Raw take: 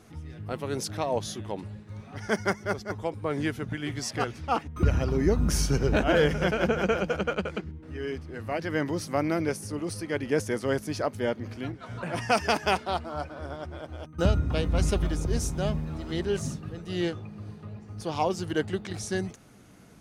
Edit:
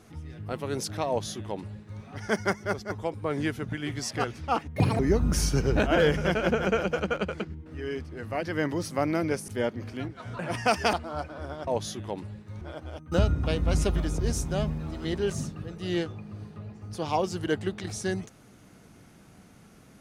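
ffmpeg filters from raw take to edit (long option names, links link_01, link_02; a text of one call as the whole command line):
ffmpeg -i in.wav -filter_complex "[0:a]asplit=7[link_01][link_02][link_03][link_04][link_05][link_06][link_07];[link_01]atrim=end=4.764[link_08];[link_02]atrim=start=4.76:end=5.16,asetpts=PTS-STARTPTS,asetrate=75852,aresample=44100[link_09];[link_03]atrim=start=5.156:end=9.652[link_10];[link_04]atrim=start=11.118:end=12.572[link_11];[link_05]atrim=start=12.938:end=13.682[link_12];[link_06]atrim=start=1.078:end=2.022[link_13];[link_07]atrim=start=13.678[link_14];[link_08][link_09]acrossfade=duration=0.004:curve1=hsin:curve2=hsin[link_15];[link_15][link_10]acrossfade=duration=0.004:curve1=hsin:curve2=hsin[link_16];[link_16][link_11]acrossfade=duration=0.004:curve1=hsin:curve2=hsin[link_17];[link_17][link_12]acrossfade=duration=0.004:curve1=hsin:curve2=hsin[link_18];[link_18][link_13]acrossfade=duration=0.004:curve1=hsin:curve2=hsin[link_19];[link_19][link_14]acrossfade=duration=0.004:curve1=hsin:curve2=hsin" out.wav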